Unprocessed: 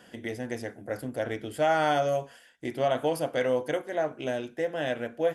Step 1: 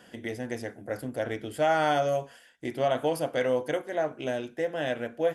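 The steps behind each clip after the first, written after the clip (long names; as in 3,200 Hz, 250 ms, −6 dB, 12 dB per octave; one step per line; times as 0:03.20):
no processing that can be heard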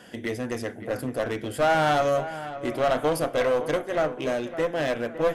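asymmetric clip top −29 dBFS
delay with a low-pass on its return 560 ms, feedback 36%, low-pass 2,900 Hz, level −13 dB
level +5.5 dB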